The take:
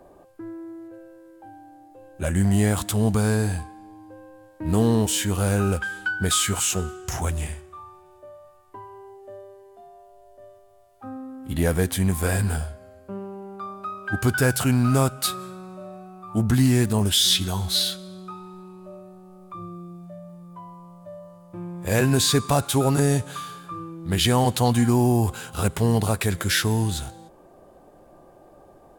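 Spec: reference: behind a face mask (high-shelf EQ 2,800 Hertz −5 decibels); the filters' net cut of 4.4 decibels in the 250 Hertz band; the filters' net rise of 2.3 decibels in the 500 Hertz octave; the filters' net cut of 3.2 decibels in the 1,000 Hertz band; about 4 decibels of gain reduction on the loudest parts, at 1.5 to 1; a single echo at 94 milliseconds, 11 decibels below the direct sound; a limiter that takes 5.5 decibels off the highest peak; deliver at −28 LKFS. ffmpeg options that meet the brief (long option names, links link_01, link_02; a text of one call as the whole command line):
ffmpeg -i in.wav -af "equalizer=frequency=250:width_type=o:gain=-7,equalizer=frequency=500:width_type=o:gain=6.5,equalizer=frequency=1000:width_type=o:gain=-6,acompressor=threshold=-27dB:ratio=1.5,alimiter=limit=-16.5dB:level=0:latency=1,highshelf=frequency=2800:gain=-5,aecho=1:1:94:0.282,volume=1.5dB" out.wav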